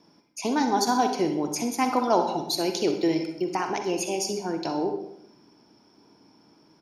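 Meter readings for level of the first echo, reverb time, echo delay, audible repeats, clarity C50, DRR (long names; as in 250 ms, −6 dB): −12.5 dB, 0.75 s, 63 ms, 1, 6.5 dB, 5.5 dB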